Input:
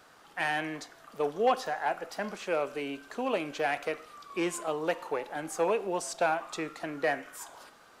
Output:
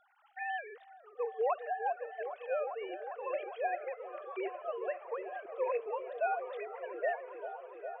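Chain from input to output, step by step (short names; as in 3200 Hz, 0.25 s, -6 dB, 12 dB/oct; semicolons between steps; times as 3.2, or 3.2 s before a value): sine-wave speech; on a send: repeats that get brighter 0.404 s, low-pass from 400 Hz, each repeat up 1 oct, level -6 dB; on the sum: gain -6 dB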